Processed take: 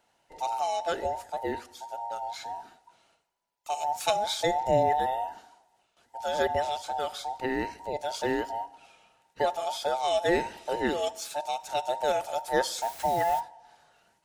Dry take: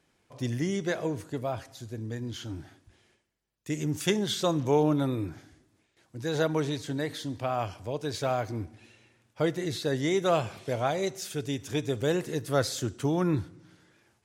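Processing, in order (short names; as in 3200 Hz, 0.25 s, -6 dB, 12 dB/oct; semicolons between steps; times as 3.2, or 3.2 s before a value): band inversion scrambler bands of 1000 Hz; 12.81–13.39 added noise white -46 dBFS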